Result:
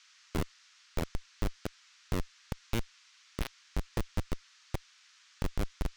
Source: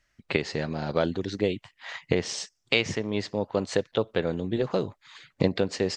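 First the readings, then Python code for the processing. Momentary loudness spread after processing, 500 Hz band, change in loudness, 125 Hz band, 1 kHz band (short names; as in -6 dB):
19 LU, -17.5 dB, -11.5 dB, -5.5 dB, -8.5 dB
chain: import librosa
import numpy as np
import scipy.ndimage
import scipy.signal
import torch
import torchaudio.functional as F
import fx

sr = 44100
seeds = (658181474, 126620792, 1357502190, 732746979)

y = fx.reverse_delay(x, sr, ms=387, wet_db=-1)
y = fx.env_lowpass(y, sr, base_hz=480.0, full_db=-21.0)
y = fx.low_shelf(y, sr, hz=63.0, db=-5.0)
y = fx.rider(y, sr, range_db=10, speed_s=0.5)
y = fx.schmitt(y, sr, flips_db=-15.5)
y = fx.dmg_noise_band(y, sr, seeds[0], low_hz=1200.0, high_hz=6400.0, level_db=-61.0)
y = y * librosa.db_to_amplitude(-1.0)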